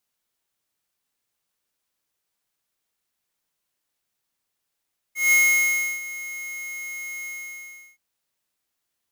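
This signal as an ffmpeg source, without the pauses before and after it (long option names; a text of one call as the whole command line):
ffmpeg -f lavfi -i "aevalsrc='0.158*(2*lt(mod(2160*t,1),0.5)-1)':duration=2.825:sample_rate=44100,afade=type=in:duration=0.17,afade=type=out:start_time=0.17:duration=0.681:silence=0.133,afade=type=out:start_time=2.11:duration=0.715" out.wav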